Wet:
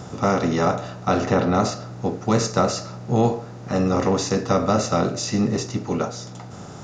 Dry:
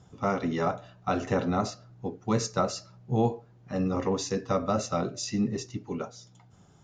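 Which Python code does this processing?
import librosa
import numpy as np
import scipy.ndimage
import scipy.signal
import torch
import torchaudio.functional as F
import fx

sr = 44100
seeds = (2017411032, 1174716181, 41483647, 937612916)

y = fx.bin_compress(x, sr, power=0.6)
y = fx.lowpass(y, sr, hz=fx.line((1.11, 6800.0), (1.53, 3700.0)), slope=12, at=(1.11, 1.53), fade=0.02)
y = F.gain(torch.from_numpy(y), 4.5).numpy()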